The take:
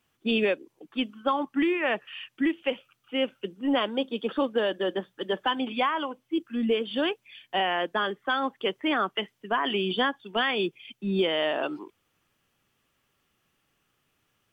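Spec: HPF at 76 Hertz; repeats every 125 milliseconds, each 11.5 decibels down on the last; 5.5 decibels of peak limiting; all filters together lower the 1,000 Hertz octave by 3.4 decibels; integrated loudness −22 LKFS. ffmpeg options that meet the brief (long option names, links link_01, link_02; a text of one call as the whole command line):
ffmpeg -i in.wav -af "highpass=76,equalizer=frequency=1000:width_type=o:gain=-4.5,alimiter=limit=-21dB:level=0:latency=1,aecho=1:1:125|250|375:0.266|0.0718|0.0194,volume=9dB" out.wav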